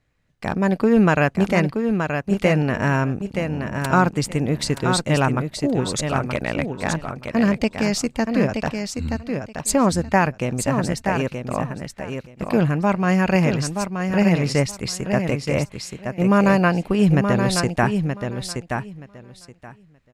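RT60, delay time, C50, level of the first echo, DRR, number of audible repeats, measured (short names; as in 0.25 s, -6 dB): none, 0.925 s, none, -6.0 dB, none, 2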